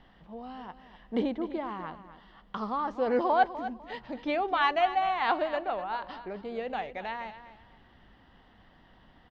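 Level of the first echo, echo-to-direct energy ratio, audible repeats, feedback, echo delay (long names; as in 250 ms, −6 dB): −13.0 dB, −12.5 dB, 2, 25%, 250 ms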